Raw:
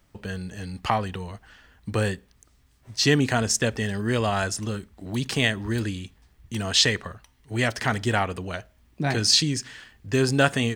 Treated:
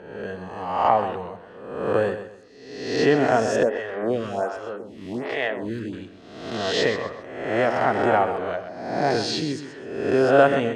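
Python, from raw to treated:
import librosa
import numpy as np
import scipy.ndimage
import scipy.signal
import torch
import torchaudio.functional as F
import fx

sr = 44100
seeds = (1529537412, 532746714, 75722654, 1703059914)

y = fx.spec_swells(x, sr, rise_s=0.97)
y = fx.bandpass_q(y, sr, hz=580.0, q=1.2)
y = fx.echo_feedback(y, sr, ms=129, feedback_pct=31, wet_db=-10.5)
y = fx.stagger_phaser(y, sr, hz=1.3, at=(3.63, 5.93))
y = F.gain(torch.from_numpy(y), 6.0).numpy()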